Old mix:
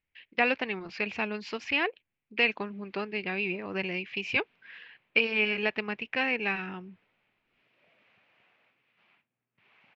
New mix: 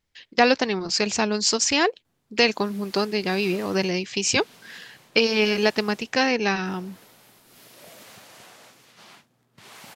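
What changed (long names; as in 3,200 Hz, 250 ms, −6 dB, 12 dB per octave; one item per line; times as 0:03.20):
background +11.0 dB
master: remove transistor ladder low-pass 2,800 Hz, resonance 60%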